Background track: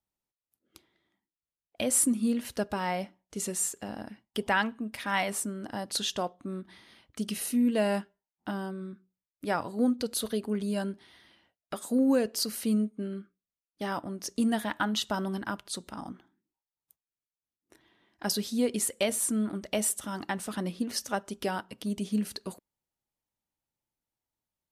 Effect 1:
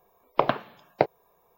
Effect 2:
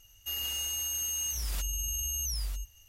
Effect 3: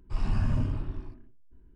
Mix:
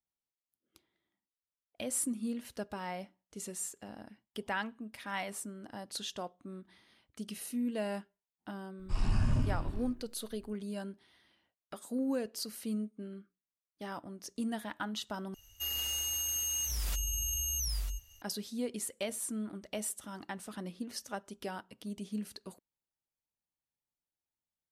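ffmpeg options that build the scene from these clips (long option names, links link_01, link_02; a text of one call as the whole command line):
ffmpeg -i bed.wav -i cue0.wav -i cue1.wav -i cue2.wav -filter_complex "[0:a]volume=-9dB[link_01];[3:a]highshelf=frequency=4300:gain=10.5[link_02];[link_01]asplit=2[link_03][link_04];[link_03]atrim=end=15.344[link_05];[2:a]atrim=end=2.88,asetpts=PTS-STARTPTS,volume=-1dB[link_06];[link_04]atrim=start=18.216[link_07];[link_02]atrim=end=1.75,asetpts=PTS-STARTPTS,volume=-2.5dB,afade=type=in:duration=0.004:curve=hsin,afade=type=out:start_time=1.746:duration=0.004:curve=hsin,adelay=8790[link_08];[link_05][link_06]acrossfade=duration=0.004:curve1=hsin:curve2=hsin[link_09];[link_09][link_07]acrossfade=duration=0.004:curve1=hsin:curve2=hsin[link_10];[link_10][link_08]amix=inputs=2:normalize=0" out.wav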